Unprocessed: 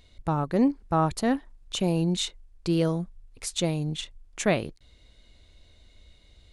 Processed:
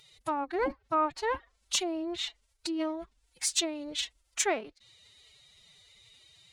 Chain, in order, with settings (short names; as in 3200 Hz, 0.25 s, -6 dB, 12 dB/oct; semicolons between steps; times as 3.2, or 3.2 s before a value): treble ducked by the level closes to 1500 Hz, closed at -21.5 dBFS; tilt +3 dB/oct; formant-preserving pitch shift +11.5 st; low shelf 370 Hz -6 dB